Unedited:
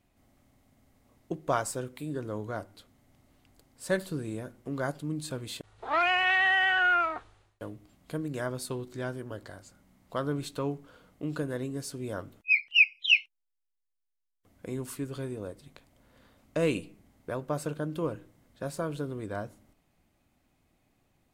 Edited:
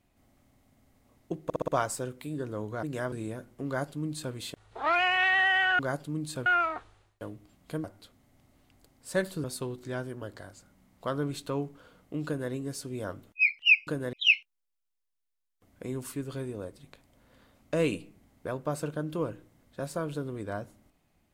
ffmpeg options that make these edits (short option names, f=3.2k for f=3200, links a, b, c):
-filter_complex "[0:a]asplit=13[a][b][c][d][e][f][g][h][i][j][k][l][m];[a]atrim=end=1.502[n];[b]atrim=start=1.438:end=1.502[o];[c]atrim=start=1.438:end=1.502[p];[d]atrim=start=1.438:end=1.502[q];[e]atrim=start=1.438:end=2.592[r];[f]atrim=start=8.238:end=8.532[s];[g]atrim=start=4.188:end=6.862[t];[h]atrim=start=4.738:end=5.412[u];[i]atrim=start=6.858:end=8.242[v];[j]atrim=start=2.588:end=4.192[w];[k]atrim=start=8.528:end=12.962[x];[l]atrim=start=11.348:end=11.612[y];[m]atrim=start=12.958[z];[n][o]acrossfade=d=0.004:c1=hsin:c2=hsin[aa];[aa][p]acrossfade=d=0.004:c1=hsin:c2=hsin[ab];[ab][q]acrossfade=d=0.004:c1=hsin:c2=hsin[ac];[ac][r]acrossfade=d=0.004:c1=hsin:c2=hsin[ad];[ad][s]acrossfade=d=0.004:c1=hsin:c2=hsin[ae];[ae][t]acrossfade=d=0.004:c1=hsin:c2=hsin[af];[af][u]acrossfade=d=0.004:c1=hsin:c2=hsin[ag];[ag][v]acrossfade=d=0.004:c1=hsin:c2=hsin[ah];[ah][w]acrossfade=d=0.004:c1=hsin:c2=hsin[ai];[ai][x]acrossfade=d=0.004:c1=hsin:c2=hsin[aj];[aj][y]acrossfade=d=0.004:c1=hsin:c2=hsin[ak];[ak][z]acrossfade=d=0.004:c1=hsin:c2=hsin"